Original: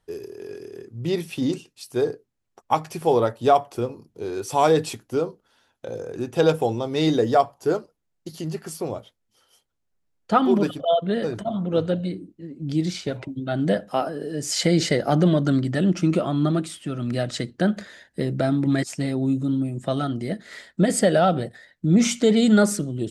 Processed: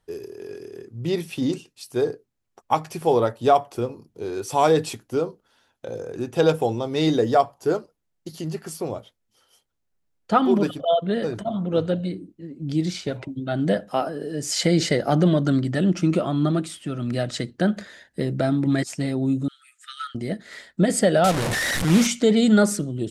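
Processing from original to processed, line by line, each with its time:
19.48–20.15 s: brick-wall FIR high-pass 1.2 kHz
21.24–22.07 s: one-bit delta coder 64 kbps, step -18 dBFS

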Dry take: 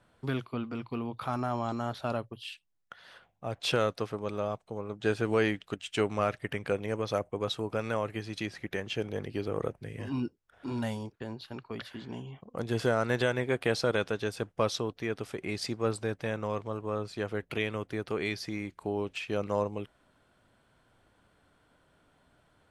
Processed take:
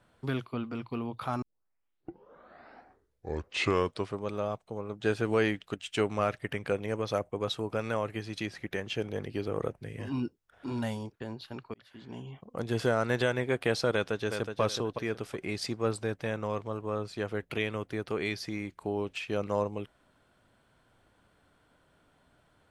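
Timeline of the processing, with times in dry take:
1.42 s: tape start 2.84 s
11.74–12.28 s: fade in linear
13.92–14.61 s: echo throw 370 ms, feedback 25%, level -6.5 dB

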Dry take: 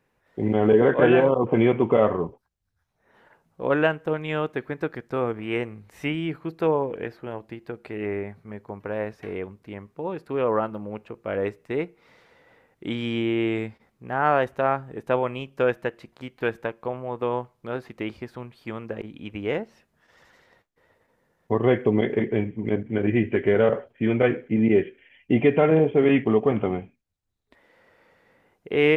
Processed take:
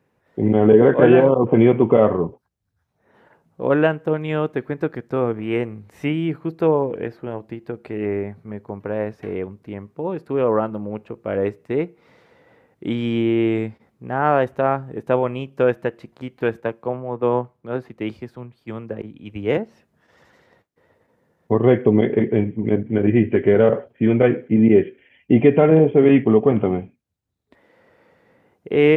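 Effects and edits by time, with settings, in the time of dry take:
16.60–19.57 s: three bands expanded up and down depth 70%
whole clip: high-pass 78 Hz; tilt shelf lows +4 dB, about 780 Hz; trim +3 dB

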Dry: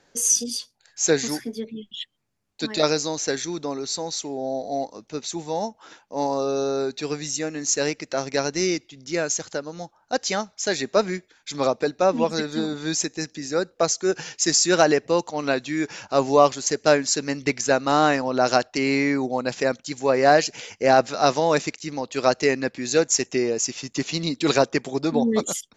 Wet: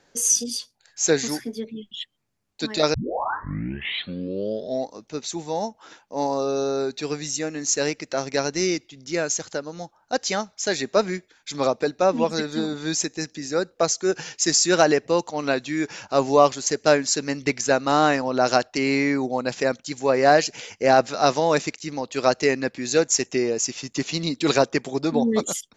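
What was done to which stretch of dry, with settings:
2.94 s: tape start 1.94 s

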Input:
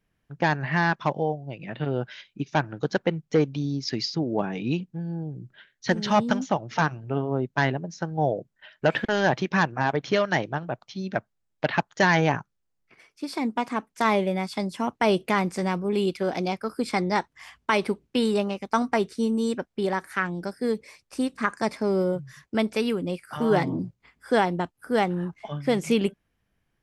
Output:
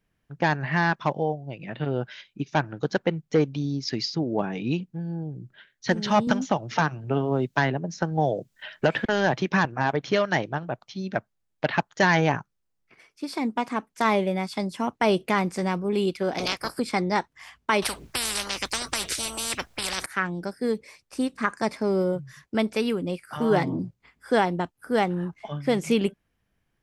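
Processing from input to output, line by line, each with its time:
6.27–9.65 s: three bands compressed up and down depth 70%
16.38–16.78 s: spectral peaks clipped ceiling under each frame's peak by 28 dB
17.82–20.06 s: spectrum-flattening compressor 10:1

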